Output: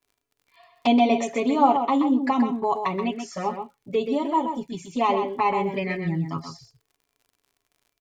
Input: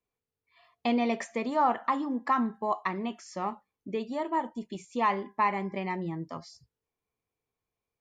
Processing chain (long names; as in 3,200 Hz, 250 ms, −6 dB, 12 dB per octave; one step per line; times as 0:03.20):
comb filter 7.2 ms, depth 73%
flanger swept by the level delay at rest 3 ms, full sweep at −27 dBFS
slap from a distant wall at 22 metres, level −7 dB
surface crackle 75 per second −56 dBFS
level +7.5 dB